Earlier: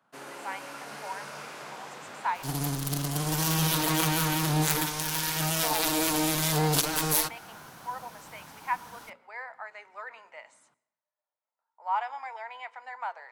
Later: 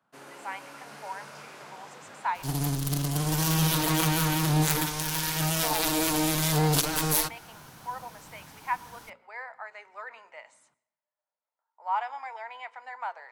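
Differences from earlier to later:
first sound -4.5 dB; master: add low shelf 150 Hz +6 dB

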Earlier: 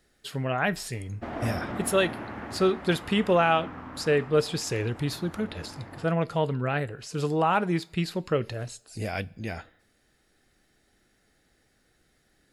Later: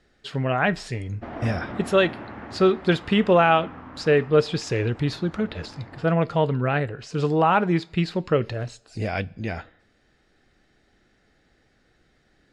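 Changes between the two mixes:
speech +5.0 dB; master: add air absorption 110 m

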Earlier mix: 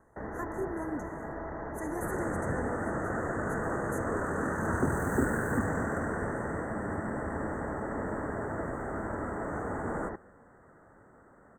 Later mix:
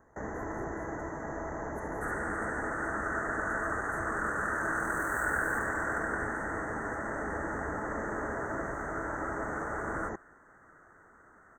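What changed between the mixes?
speech -12.0 dB; first sound: remove air absorption 340 m; second sound: add resonant high-pass 1400 Hz, resonance Q 1.9

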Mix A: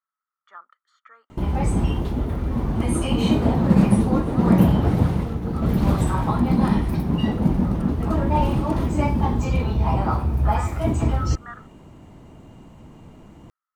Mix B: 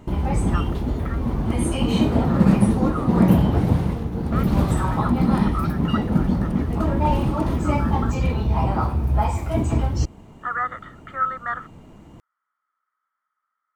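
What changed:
speech +11.5 dB; background: entry -1.30 s

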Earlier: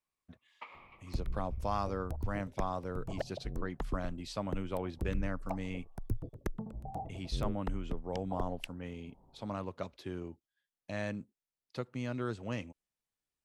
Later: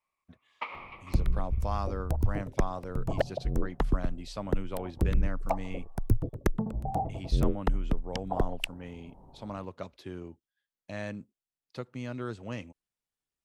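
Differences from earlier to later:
first sound +11.5 dB; second sound +10.0 dB

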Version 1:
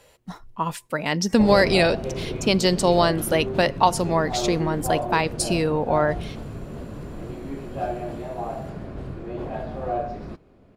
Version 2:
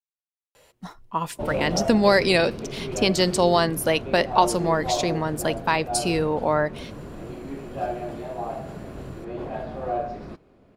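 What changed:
speech: entry +0.55 s; master: add low shelf 160 Hz -5.5 dB

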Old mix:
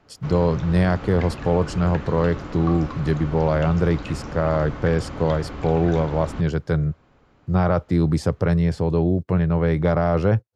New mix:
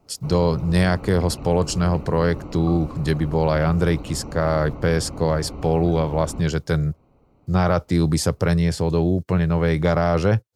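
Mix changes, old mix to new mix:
background: add running mean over 26 samples; master: remove LPF 1600 Hz 6 dB/oct

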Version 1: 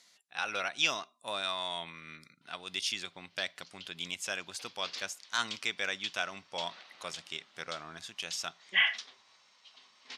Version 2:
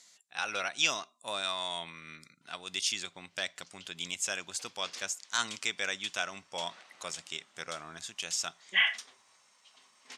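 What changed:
speech: add bell 7400 Hz +9.5 dB 0.62 oct; background: remove synth low-pass 4300 Hz, resonance Q 1.9

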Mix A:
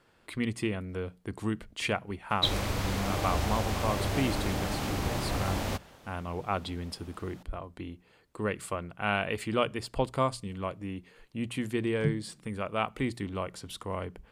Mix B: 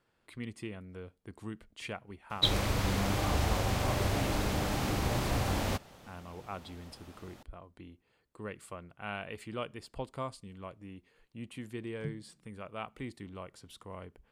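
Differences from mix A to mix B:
speech -10.5 dB; master: remove notches 60/120/180 Hz

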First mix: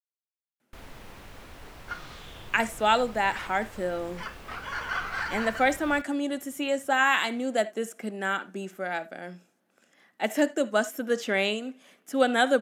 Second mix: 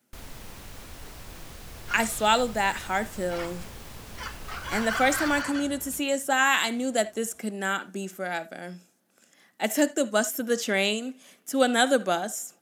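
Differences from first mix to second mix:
speech: entry -0.60 s; first sound: entry -0.60 s; master: add tone controls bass +4 dB, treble +10 dB

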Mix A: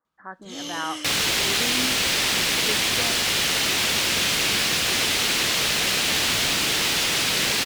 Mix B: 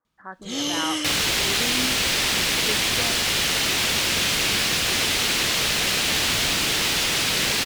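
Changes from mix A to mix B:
first sound +7.5 dB; master: add low shelf 79 Hz +7 dB

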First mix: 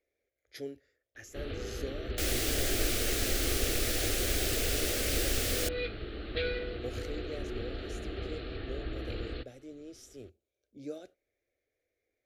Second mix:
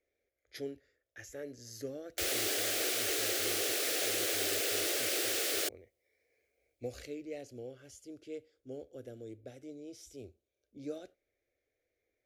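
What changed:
first sound: muted; second sound: add steep high-pass 330 Hz 36 dB/oct

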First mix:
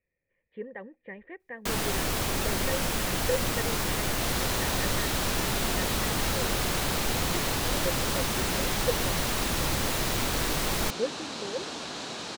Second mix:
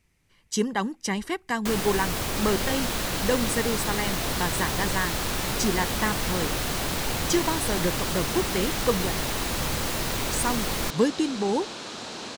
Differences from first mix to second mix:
speech: remove vocal tract filter e; second sound: entry -1.85 s

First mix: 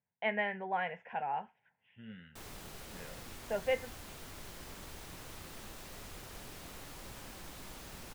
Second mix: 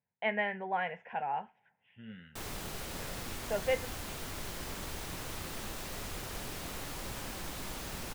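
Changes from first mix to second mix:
speech: send +8.5 dB; background +7.5 dB

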